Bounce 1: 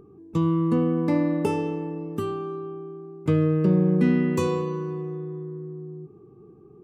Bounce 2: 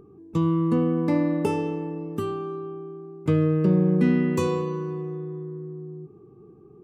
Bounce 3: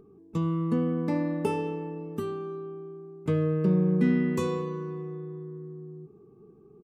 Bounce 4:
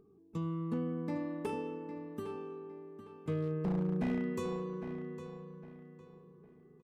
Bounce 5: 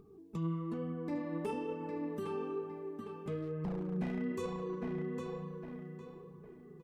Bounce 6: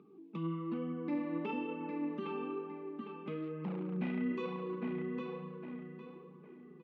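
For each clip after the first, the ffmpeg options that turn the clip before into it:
-af anull
-af "aecho=1:1:4.6:0.34,volume=-4.5dB"
-filter_complex "[0:a]aeval=exprs='0.126*(abs(mod(val(0)/0.126+3,4)-2)-1)':c=same,asplit=2[a][b];[b]adelay=807,lowpass=f=4.7k:p=1,volume=-10dB,asplit=2[c][d];[d]adelay=807,lowpass=f=4.7k:p=1,volume=0.32,asplit=2[e][f];[f]adelay=807,lowpass=f=4.7k:p=1,volume=0.32,asplit=2[g][h];[h]adelay=807,lowpass=f=4.7k:p=1,volume=0.32[i];[a][c][e][g][i]amix=inputs=5:normalize=0,volume=-9dB"
-af "alimiter=level_in=12.5dB:limit=-24dB:level=0:latency=1:release=91,volume=-12.5dB,flanger=delay=0.8:depth=5.3:regen=35:speed=1.1:shape=triangular,volume=10dB"
-af "highpass=f=200:w=0.5412,highpass=f=200:w=1.3066,equalizer=f=430:t=q:w=4:g=-9,equalizer=f=680:t=q:w=4:g=-9,equalizer=f=1k:t=q:w=4:g=-3,equalizer=f=1.7k:t=q:w=4:g=-6,equalizer=f=2.5k:t=q:w=4:g=4,lowpass=f=3.4k:w=0.5412,lowpass=f=3.4k:w=1.3066,volume=4dB"

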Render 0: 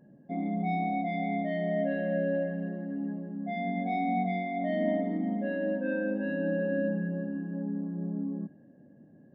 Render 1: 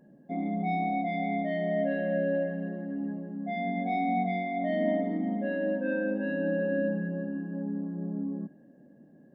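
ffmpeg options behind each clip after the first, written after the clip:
-af "equalizer=f=100:t=o:w=0.71:g=-13.5,volume=1.5dB"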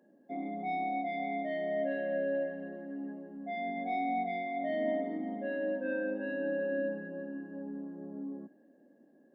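-af "highpass=f=260:w=0.5412,highpass=f=260:w=1.3066,volume=-3.5dB"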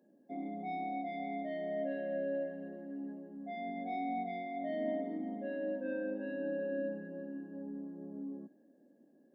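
-af "equalizer=f=1.6k:t=o:w=2.4:g=-6.5,volume=-1.5dB"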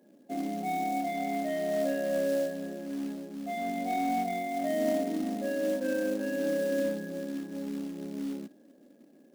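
-af "acrusher=bits=4:mode=log:mix=0:aa=0.000001,volume=7.5dB"

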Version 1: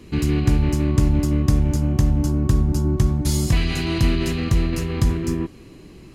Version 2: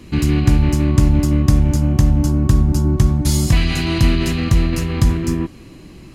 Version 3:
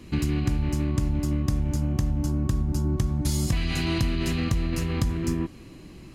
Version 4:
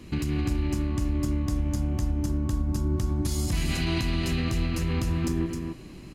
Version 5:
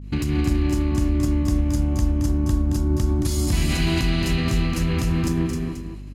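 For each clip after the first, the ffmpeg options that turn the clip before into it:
-af "equalizer=f=420:w=4.7:g=-7,volume=4.5dB"
-af "acompressor=threshold=-15dB:ratio=6,volume=-5.5dB"
-af "alimiter=limit=-19dB:level=0:latency=1,aecho=1:1:263:0.562"
-af "agate=range=-33dB:threshold=-35dB:ratio=3:detection=peak,aecho=1:1:222:0.422,aeval=exprs='val(0)+0.0112*(sin(2*PI*50*n/s)+sin(2*PI*2*50*n/s)/2+sin(2*PI*3*50*n/s)/3+sin(2*PI*4*50*n/s)/4+sin(2*PI*5*50*n/s)/5)':c=same,volume=4.5dB"

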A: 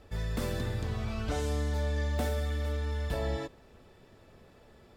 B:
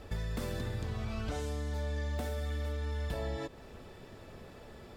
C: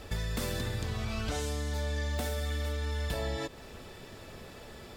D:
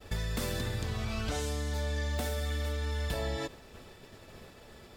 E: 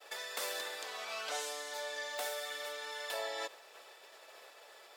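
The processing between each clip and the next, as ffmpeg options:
-af "acompressor=threshold=-40dB:ratio=6,volume=6.5dB"
-af "highshelf=f=2k:g=8,volume=2dB"
-af "agate=range=-33dB:threshold=-42dB:ratio=3:detection=peak"
-af "highpass=f=540:w=0.5412,highpass=f=540:w=1.3066"

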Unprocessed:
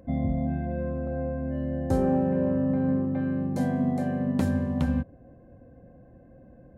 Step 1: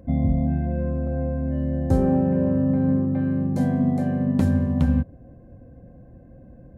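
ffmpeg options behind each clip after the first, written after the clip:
-af "lowshelf=f=250:g=8.5"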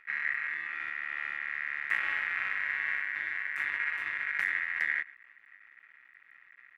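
-filter_complex "[0:a]asplit=2[a][b];[b]adelay=116.6,volume=-22dB,highshelf=f=4k:g=-2.62[c];[a][c]amix=inputs=2:normalize=0,aeval=exprs='max(val(0),0)':c=same,aeval=exprs='val(0)*sin(2*PI*1900*n/s)':c=same,volume=-6dB"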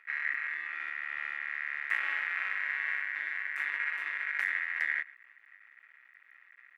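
-af "highpass=350,volume=-1dB"

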